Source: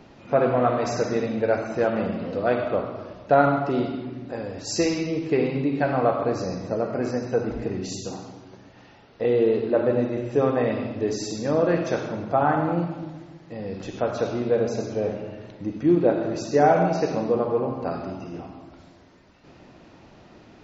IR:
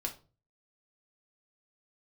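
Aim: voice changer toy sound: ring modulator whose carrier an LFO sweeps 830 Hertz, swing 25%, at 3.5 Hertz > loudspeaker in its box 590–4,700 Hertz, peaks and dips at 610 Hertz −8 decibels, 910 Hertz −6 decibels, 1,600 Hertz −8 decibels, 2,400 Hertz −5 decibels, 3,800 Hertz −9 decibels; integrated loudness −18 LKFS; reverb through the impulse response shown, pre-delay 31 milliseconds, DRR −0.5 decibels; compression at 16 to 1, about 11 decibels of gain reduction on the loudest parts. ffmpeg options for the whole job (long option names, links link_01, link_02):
-filter_complex "[0:a]acompressor=threshold=-24dB:ratio=16,asplit=2[link_01][link_02];[1:a]atrim=start_sample=2205,adelay=31[link_03];[link_02][link_03]afir=irnorm=-1:irlink=0,volume=-0.5dB[link_04];[link_01][link_04]amix=inputs=2:normalize=0,aeval=exprs='val(0)*sin(2*PI*830*n/s+830*0.25/3.5*sin(2*PI*3.5*n/s))':channel_layout=same,highpass=590,equalizer=frequency=610:width_type=q:width=4:gain=-8,equalizer=frequency=910:width_type=q:width=4:gain=-6,equalizer=frequency=1600:width_type=q:width=4:gain=-8,equalizer=frequency=2400:width_type=q:width=4:gain=-5,equalizer=frequency=3800:width_type=q:width=4:gain=-9,lowpass=frequency=4700:width=0.5412,lowpass=frequency=4700:width=1.3066,volume=16.5dB"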